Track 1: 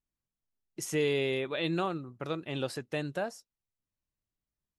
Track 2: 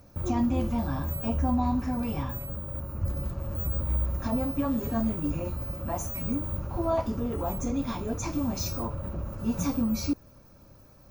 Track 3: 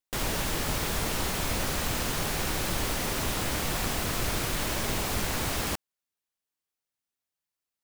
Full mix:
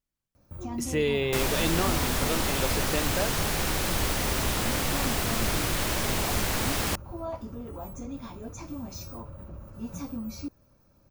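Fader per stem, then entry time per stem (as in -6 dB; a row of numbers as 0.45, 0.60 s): +2.5, -8.5, +2.0 dB; 0.00, 0.35, 1.20 s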